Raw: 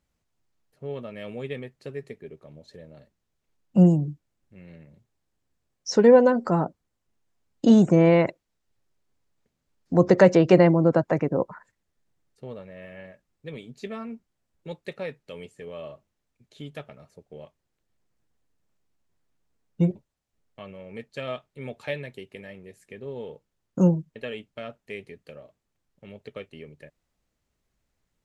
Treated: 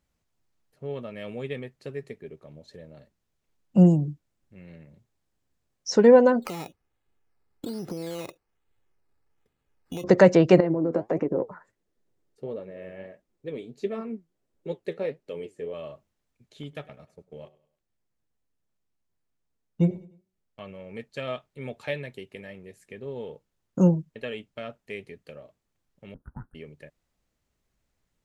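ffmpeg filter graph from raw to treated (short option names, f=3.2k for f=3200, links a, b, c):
-filter_complex "[0:a]asettb=1/sr,asplit=3[a][b][c];[a]atrim=end=6.424[d];[b]atrim=start=6.42:end=10.04,asetpts=PTS-STARTPTS,afade=t=in:d=0.004:c=qsin,afade=t=out:st=3.616:d=0.004:c=qsin,acrusher=samples=11:mix=1:aa=0.000001:lfo=1:lforange=6.6:lforate=1.2,aecho=1:1:2.4:0.35,atrim=end_sample=159642,acompressor=threshold=-30dB:ratio=12:attack=3.2:release=140:knee=1:detection=peak[e];[c]atrim=start=10.036[f];[d][e]acrossfade=d=0.004:c1=hsin:c2=qsin[g];[g][f]acrossfade=d=0.004:c1=qsin:c2=hsin,asettb=1/sr,asplit=3[h][i][j];[h]atrim=end=10.604[k];[i]atrim=start=10.6:end=15.74,asetpts=PTS-STARTPTS,afade=t=in:d=0.004:c=qsin,afade=t=out:st=5.136:d=0.004:c=qsin,acompressor=threshold=-23dB:ratio=10:attack=3.2:release=140:knee=1:detection=peak,equalizer=f=390:w=1:g=11.5,flanger=delay=2.9:depth=9.7:regen=64:speed=1.5:shape=triangular[l];[j]atrim=start=15.736[m];[k][l]acrossfade=d=0.004:c1=hsin:c2=qsin[n];[n][m]acrossfade=d=0.004:c1=qsin:c2=hsin,asettb=1/sr,asplit=3[o][p][q];[o]atrim=end=16.634[r];[p]atrim=start=16.63:end=20.67,asetpts=PTS-STARTPTS,afade=t=in:d=0.004:c=qsin,afade=t=out:st=4.036:d=0.004:c=qsin,bandreject=f=186.7:t=h:w=4,bandreject=f=373.4:t=h:w=4,bandreject=f=560.1:t=h:w=4,bandreject=f=746.8:t=h:w=4,bandreject=f=933.5:t=h:w=4,bandreject=f=1.1202k:t=h:w=4,bandreject=f=1.3069k:t=h:w=4,bandreject=f=1.4936k:t=h:w=4,bandreject=f=1.6803k:t=h:w=4,bandreject=f=1.867k:t=h:w=4,bandreject=f=2.0537k:t=h:w=4,bandreject=f=2.2404k:t=h:w=4,agate=range=-7dB:threshold=-51dB:ratio=16:release=100:detection=peak,aecho=1:1:101|202|303:0.0891|0.0357|0.0143,atrim=end_sample=178164[s];[q]atrim=start=20.666[t];[r][s]acrossfade=d=0.004:c1=hsin:c2=qsin[u];[u][t]acrossfade=d=0.004:c1=qsin:c2=hsin,asettb=1/sr,asplit=3[v][w][x];[v]atrim=end=26.144[y];[w]atrim=start=26.14:end=26.55,asetpts=PTS-STARTPTS,afade=t=in:d=0.004:c=qsin,afade=t=out:st=0.406:d=0.004:c=qsin,bass=f=250:g=-14,treble=f=4k:g=-5,afreqshift=-370,asuperstop=centerf=3900:order=20:qfactor=0.54[z];[x]atrim=start=26.546[aa];[y][z]acrossfade=d=0.004:c1=hsin:c2=qsin[ab];[ab][aa]acrossfade=d=0.004:c1=qsin:c2=hsin"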